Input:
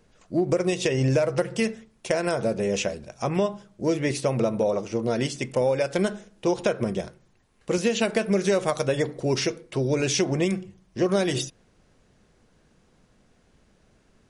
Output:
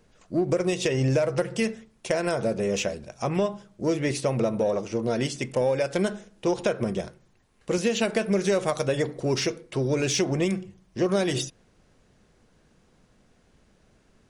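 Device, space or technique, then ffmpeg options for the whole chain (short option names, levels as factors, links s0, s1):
parallel distortion: -filter_complex "[0:a]asplit=2[s0][s1];[s1]asoftclip=type=hard:threshold=0.0501,volume=0.251[s2];[s0][s2]amix=inputs=2:normalize=0,volume=0.794"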